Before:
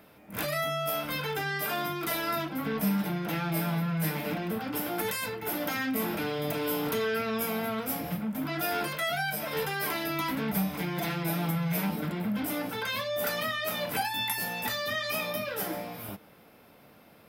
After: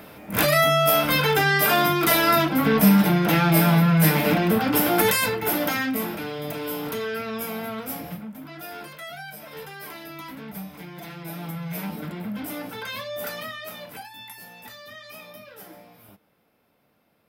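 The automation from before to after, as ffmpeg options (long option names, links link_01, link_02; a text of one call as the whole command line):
ffmpeg -i in.wav -af "volume=18.5dB,afade=type=out:start_time=5.04:duration=1.12:silence=0.251189,afade=type=out:start_time=7.99:duration=0.42:silence=0.421697,afade=type=in:start_time=11.08:duration=0.9:silence=0.473151,afade=type=out:start_time=13.15:duration=0.93:silence=0.316228" out.wav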